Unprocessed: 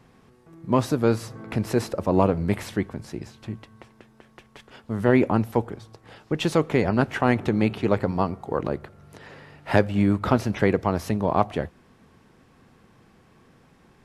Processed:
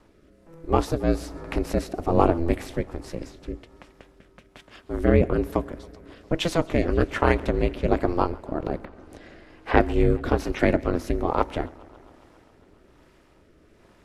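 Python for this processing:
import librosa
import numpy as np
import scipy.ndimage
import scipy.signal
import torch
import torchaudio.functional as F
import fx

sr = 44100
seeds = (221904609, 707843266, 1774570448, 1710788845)

y = fx.env_lowpass_down(x, sr, base_hz=3000.0, full_db=-27.5, at=(8.84, 9.79), fade=0.02)
y = y * np.sin(2.0 * np.pi * 170.0 * np.arange(len(y)) / sr)
y = fx.rotary(y, sr, hz=1.2)
y = fx.echo_warbled(y, sr, ms=136, feedback_pct=76, rate_hz=2.8, cents=128, wet_db=-23.5)
y = y * librosa.db_to_amplitude(4.5)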